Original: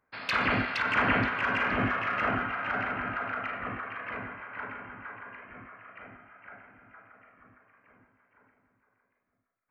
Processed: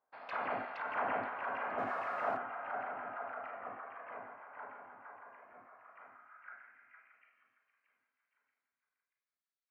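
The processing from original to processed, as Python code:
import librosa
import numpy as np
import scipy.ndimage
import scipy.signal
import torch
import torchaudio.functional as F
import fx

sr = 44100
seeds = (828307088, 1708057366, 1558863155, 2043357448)

y = fx.zero_step(x, sr, step_db=-32.5, at=(1.78, 2.37))
y = fx.filter_sweep_bandpass(y, sr, from_hz=750.0, to_hz=4100.0, start_s=5.72, end_s=7.77, q=2.4)
y = F.gain(torch.from_numpy(y), -1.5).numpy()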